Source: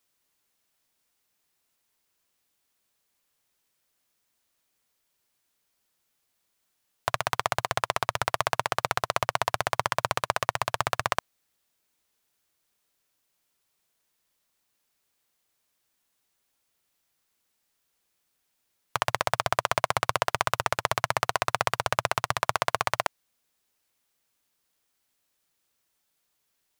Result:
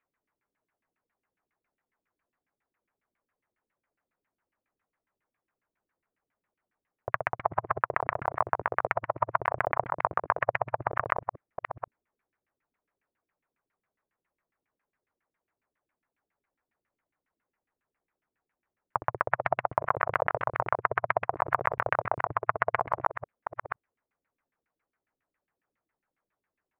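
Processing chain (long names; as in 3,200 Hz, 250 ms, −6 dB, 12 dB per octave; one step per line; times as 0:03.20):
delay that plays each chunk backwards 495 ms, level −7 dB
auto-filter low-pass saw down 7.3 Hz 240–2,400 Hz
high shelf with overshoot 2,900 Hz −9 dB, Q 1.5
level −4.5 dB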